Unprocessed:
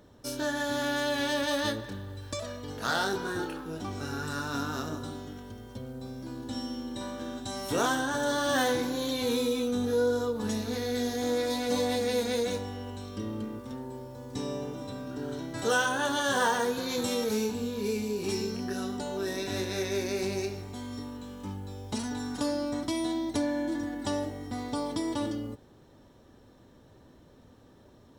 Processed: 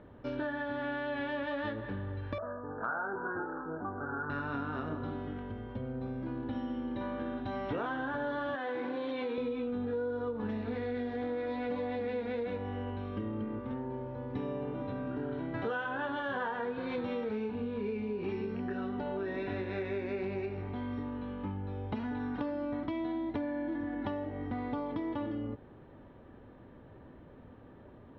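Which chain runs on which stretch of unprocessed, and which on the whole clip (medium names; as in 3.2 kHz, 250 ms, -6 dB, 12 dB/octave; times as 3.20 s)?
2.38–4.30 s: steep low-pass 1.6 kHz 96 dB/octave + tilt EQ +3 dB/octave
8.55–9.38 s: high-pass 280 Hz + compression 3:1, threshold -29 dBFS
whole clip: inverse Chebyshev low-pass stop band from 8 kHz, stop band 60 dB; compression 5:1, threshold -36 dBFS; trim +3 dB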